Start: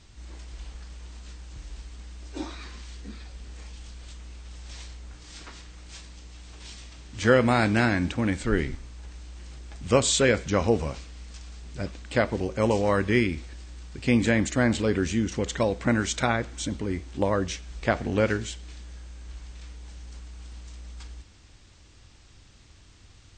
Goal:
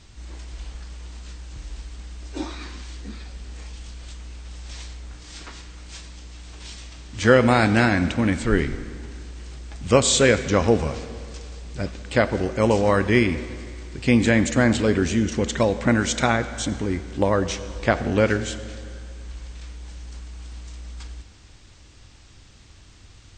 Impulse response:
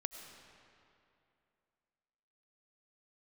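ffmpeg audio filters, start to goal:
-filter_complex "[0:a]asplit=2[a][b];[1:a]atrim=start_sample=2205,asetrate=52920,aresample=44100[c];[b][c]afir=irnorm=-1:irlink=0,volume=0dB[d];[a][d]amix=inputs=2:normalize=0"

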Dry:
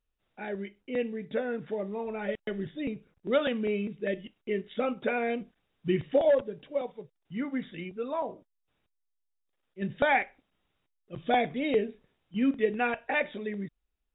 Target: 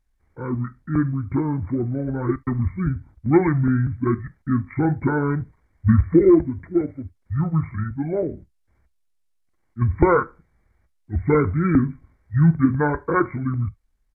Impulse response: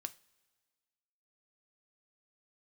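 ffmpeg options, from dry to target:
-filter_complex "[0:a]equalizer=f=100:t=o:w=1.1:g=15,asetrate=26990,aresample=44100,atempo=1.63392,asplit=2[a][b];[1:a]atrim=start_sample=2205,atrim=end_sample=3528,lowshelf=f=180:g=7[c];[b][c]afir=irnorm=-1:irlink=0,volume=4dB[d];[a][d]amix=inputs=2:normalize=0,volume=1dB"

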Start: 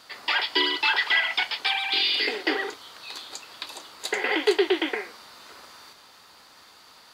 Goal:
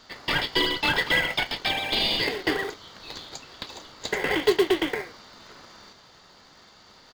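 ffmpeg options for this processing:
-filter_complex "[0:a]aresample=16000,aresample=44100,asplit=2[a][b];[b]acrusher=samples=30:mix=1:aa=0.000001,volume=-7dB[c];[a][c]amix=inputs=2:normalize=0,bandreject=f=2.5k:w=18,volume=-1.5dB"

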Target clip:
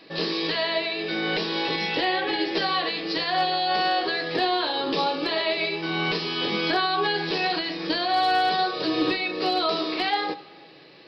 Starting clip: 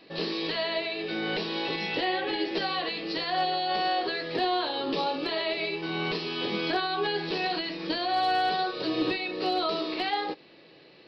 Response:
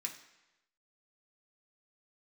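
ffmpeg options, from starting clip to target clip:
-filter_complex "[0:a]asplit=2[a][b];[1:a]atrim=start_sample=2205,asetrate=27783,aresample=44100[c];[b][c]afir=irnorm=-1:irlink=0,volume=-10dB[d];[a][d]amix=inputs=2:normalize=0,volume=3.5dB"

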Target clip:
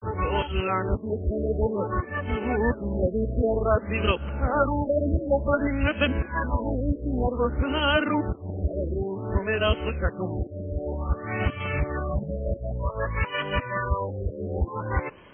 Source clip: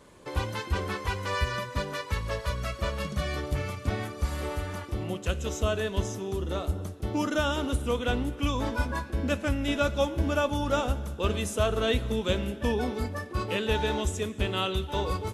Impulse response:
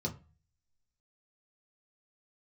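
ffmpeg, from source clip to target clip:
-af "areverse,crystalizer=i=5:c=0,afftfilt=real='re*lt(b*sr/1024,670*pow(3300/670,0.5+0.5*sin(2*PI*0.54*pts/sr)))':imag='im*lt(b*sr/1024,670*pow(3300/670,0.5+0.5*sin(2*PI*0.54*pts/sr)))':win_size=1024:overlap=0.75,volume=3dB"

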